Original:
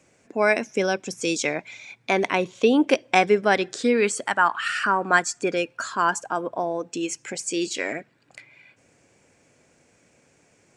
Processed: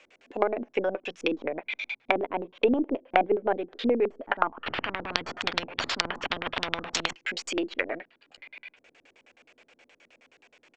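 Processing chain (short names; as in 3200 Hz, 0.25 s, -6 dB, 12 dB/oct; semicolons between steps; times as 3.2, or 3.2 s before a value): half-wave gain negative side -3 dB; doubler 12 ms -9.5 dB; LFO low-pass square 9.5 Hz 240–3100 Hz; tone controls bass -15 dB, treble +3 dB; treble ducked by the level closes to 500 Hz, closed at -22 dBFS; bell 160 Hz -10.5 dB 1.9 oct; 4.66–7.13 spectral compressor 10:1; gain +5 dB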